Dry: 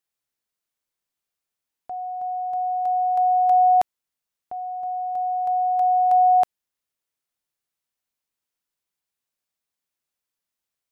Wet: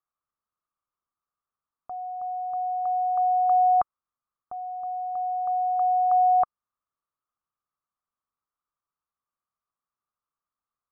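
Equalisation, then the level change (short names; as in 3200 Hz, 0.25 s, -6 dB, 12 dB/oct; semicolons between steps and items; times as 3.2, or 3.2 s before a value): synth low-pass 1200 Hz, resonance Q 8.9; low shelf 180 Hz +7.5 dB; -8.0 dB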